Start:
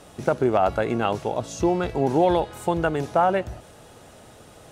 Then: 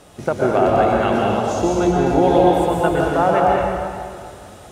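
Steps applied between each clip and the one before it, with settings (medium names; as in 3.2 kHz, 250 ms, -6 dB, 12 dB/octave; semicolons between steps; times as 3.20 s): plate-style reverb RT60 2.2 s, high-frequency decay 0.8×, pre-delay 105 ms, DRR -3.5 dB; trim +1 dB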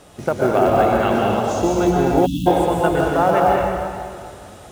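short-mantissa float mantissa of 4-bit; spectral selection erased 2.26–2.47 s, 320–2600 Hz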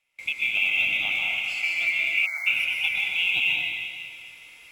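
split-band scrambler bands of 2 kHz; gate with hold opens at -32 dBFS; trim -8.5 dB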